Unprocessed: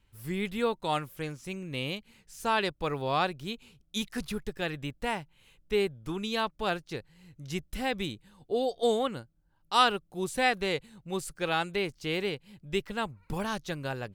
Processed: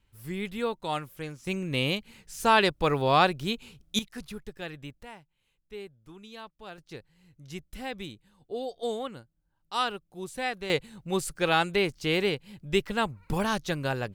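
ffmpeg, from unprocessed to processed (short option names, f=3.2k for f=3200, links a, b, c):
-af "asetnsamples=n=441:p=0,asendcmd='1.47 volume volume 6.5dB;3.99 volume volume -5.5dB;5.03 volume volume -14dB;6.78 volume volume -5.5dB;10.7 volume volume 5dB',volume=-1.5dB"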